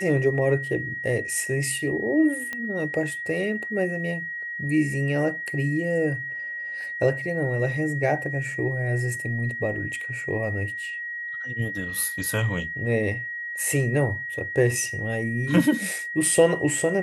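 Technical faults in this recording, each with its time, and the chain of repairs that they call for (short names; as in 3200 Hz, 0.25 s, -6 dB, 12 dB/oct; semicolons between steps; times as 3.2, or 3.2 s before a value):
tone 1900 Hz -30 dBFS
2.53 pop -17 dBFS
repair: de-click; notch 1900 Hz, Q 30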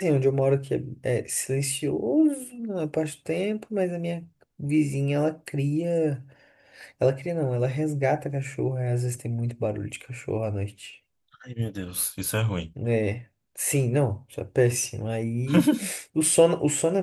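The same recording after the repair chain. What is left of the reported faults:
none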